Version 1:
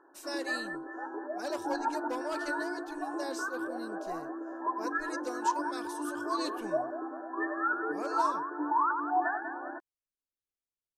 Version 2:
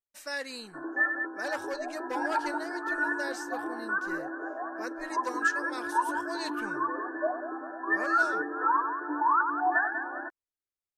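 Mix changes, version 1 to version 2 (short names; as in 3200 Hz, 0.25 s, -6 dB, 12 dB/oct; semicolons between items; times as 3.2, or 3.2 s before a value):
background: entry +0.50 s; master: add bell 1800 Hz +9 dB 1 oct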